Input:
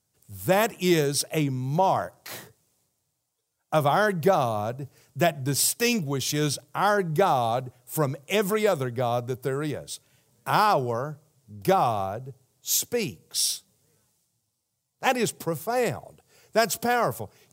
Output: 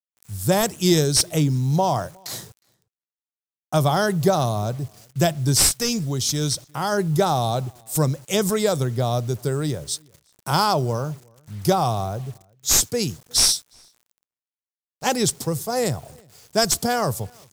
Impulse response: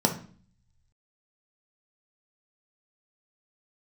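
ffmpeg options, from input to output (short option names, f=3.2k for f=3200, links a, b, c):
-filter_complex "[0:a]aexciter=amount=8.5:drive=2.9:freq=3.7k,volume=3dB,asoftclip=hard,volume=-3dB,aemphasis=mode=reproduction:type=bsi,asplit=3[a][b][c];[a]afade=t=out:st=5.68:d=0.02[d];[b]acompressor=threshold=-26dB:ratio=1.5,afade=t=in:st=5.68:d=0.02,afade=t=out:st=6.91:d=0.02[e];[c]afade=t=in:st=6.91:d=0.02[f];[d][e][f]amix=inputs=3:normalize=0,acrusher=bits=7:mix=0:aa=0.000001,asplit=2[g][h];[h]adelay=361.5,volume=-29dB,highshelf=f=4k:g=-8.13[i];[g][i]amix=inputs=2:normalize=0"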